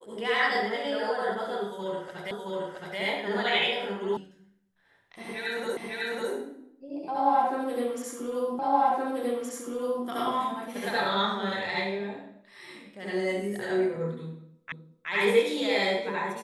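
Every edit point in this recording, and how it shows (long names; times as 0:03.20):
0:02.31: the same again, the last 0.67 s
0:04.17: cut off before it has died away
0:05.77: the same again, the last 0.55 s
0:08.59: the same again, the last 1.47 s
0:14.72: the same again, the last 0.37 s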